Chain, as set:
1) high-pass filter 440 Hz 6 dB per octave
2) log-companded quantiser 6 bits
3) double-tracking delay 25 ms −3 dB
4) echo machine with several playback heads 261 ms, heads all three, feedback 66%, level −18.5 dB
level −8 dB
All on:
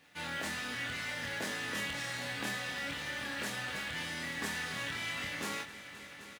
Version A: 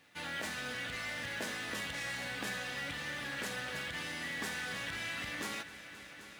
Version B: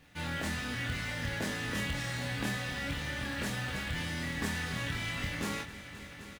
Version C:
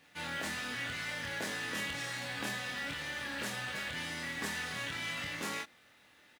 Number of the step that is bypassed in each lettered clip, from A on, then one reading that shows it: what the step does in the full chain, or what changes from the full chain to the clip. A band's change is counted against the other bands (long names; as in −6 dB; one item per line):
3, change in crest factor −2.0 dB
1, 125 Hz band +11.0 dB
4, echo-to-direct ratio −10.0 dB to none audible